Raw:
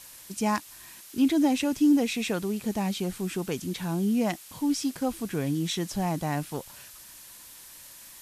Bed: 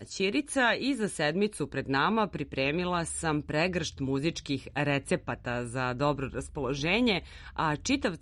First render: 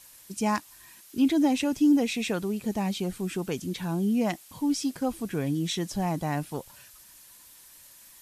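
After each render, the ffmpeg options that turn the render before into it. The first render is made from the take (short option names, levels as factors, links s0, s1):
-af "afftdn=nr=6:nf=-48"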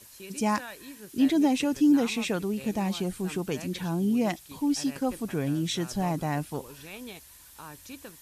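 -filter_complex "[1:a]volume=0.15[s0];[0:a][s0]amix=inputs=2:normalize=0"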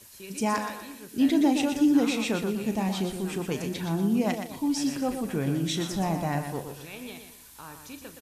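-filter_complex "[0:a]asplit=2[s0][s1];[s1]adelay=36,volume=0.251[s2];[s0][s2]amix=inputs=2:normalize=0,asplit=2[s3][s4];[s4]aecho=0:1:121|242|363|484:0.422|0.152|0.0547|0.0197[s5];[s3][s5]amix=inputs=2:normalize=0"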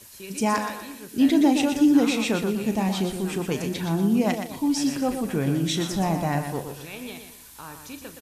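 -af "volume=1.5"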